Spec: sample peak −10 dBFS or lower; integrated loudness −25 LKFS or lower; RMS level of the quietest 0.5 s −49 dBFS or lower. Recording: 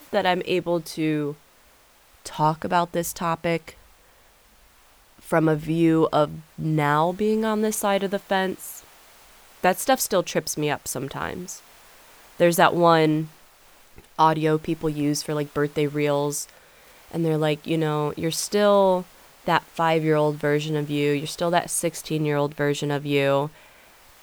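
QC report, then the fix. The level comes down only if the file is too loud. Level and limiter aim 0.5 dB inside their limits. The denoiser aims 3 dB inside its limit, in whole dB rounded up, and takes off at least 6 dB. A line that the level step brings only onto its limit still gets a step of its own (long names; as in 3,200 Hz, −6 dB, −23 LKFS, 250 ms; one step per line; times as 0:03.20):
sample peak −4.0 dBFS: out of spec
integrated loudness −23.0 LKFS: out of spec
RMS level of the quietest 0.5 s −55 dBFS: in spec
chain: level −2.5 dB
brickwall limiter −10.5 dBFS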